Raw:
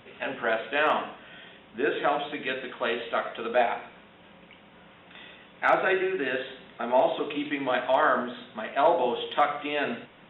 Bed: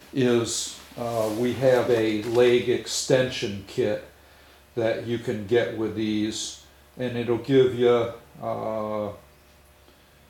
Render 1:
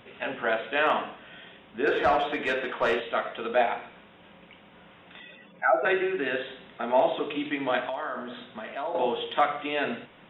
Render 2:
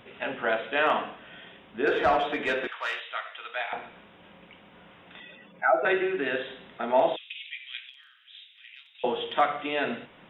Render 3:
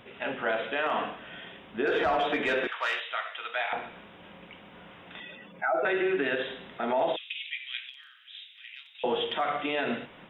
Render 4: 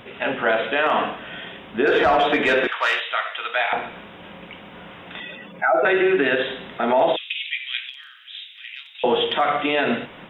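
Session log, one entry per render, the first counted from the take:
0:01.87–0:03.00: mid-hump overdrive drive 17 dB, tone 1,200 Hz, clips at −12 dBFS; 0:05.20–0:05.85: expanding power law on the bin magnitudes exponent 2; 0:07.89–0:08.95: downward compressor 2.5 to 1, threshold −34 dBFS
0:02.67–0:03.73: high-pass filter 1,400 Hz; 0:07.16–0:09.04: Butterworth high-pass 2,300 Hz
automatic gain control gain up to 3 dB; brickwall limiter −19 dBFS, peak gain reduction 10 dB
level +9 dB

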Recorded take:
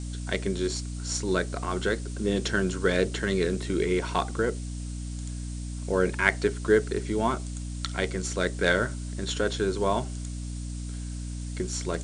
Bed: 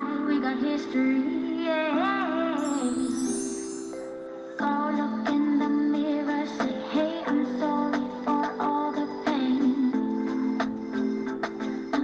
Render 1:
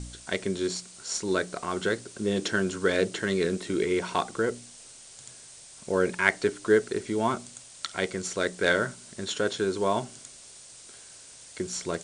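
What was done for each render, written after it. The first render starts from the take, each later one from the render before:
hum removal 60 Hz, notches 5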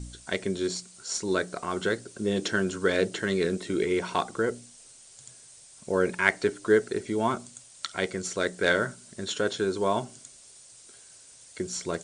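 broadband denoise 6 dB, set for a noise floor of −49 dBFS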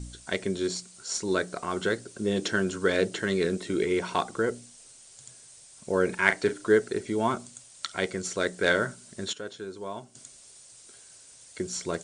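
0:06.06–0:06.63: double-tracking delay 37 ms −9.5 dB
0:09.33–0:10.15: clip gain −11 dB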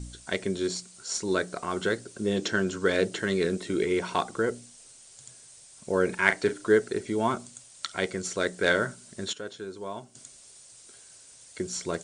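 0:02.36–0:02.86: Butterworth low-pass 8,400 Hz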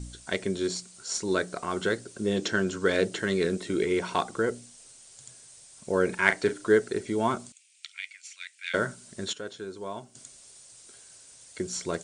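0:07.52–0:08.74: four-pole ladder high-pass 2,200 Hz, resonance 70%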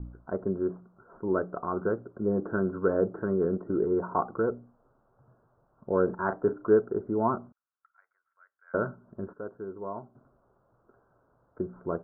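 Butterworth low-pass 1,400 Hz 72 dB per octave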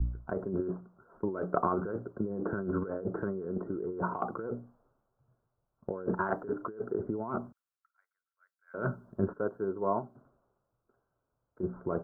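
compressor whose output falls as the input rises −33 dBFS, ratio −1
multiband upward and downward expander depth 70%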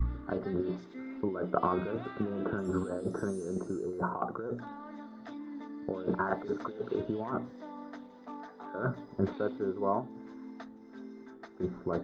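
mix in bed −19 dB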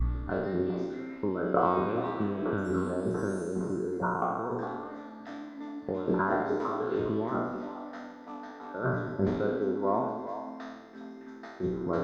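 peak hold with a decay on every bin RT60 1.11 s
echo through a band-pass that steps 204 ms, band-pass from 300 Hz, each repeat 1.4 octaves, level −5.5 dB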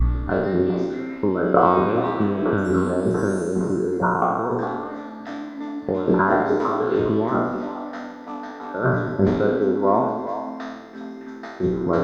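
level +9.5 dB

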